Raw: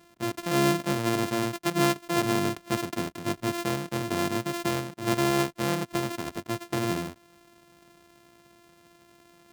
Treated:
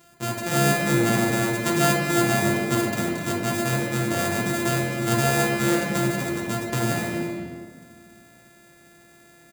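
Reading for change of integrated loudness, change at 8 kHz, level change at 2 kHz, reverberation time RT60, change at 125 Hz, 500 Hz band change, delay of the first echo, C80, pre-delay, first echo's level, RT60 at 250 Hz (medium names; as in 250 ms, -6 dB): +5.0 dB, +8.0 dB, +8.0 dB, 1.7 s, +7.5 dB, +4.5 dB, 252 ms, 2.0 dB, 6 ms, -10.0 dB, 2.4 s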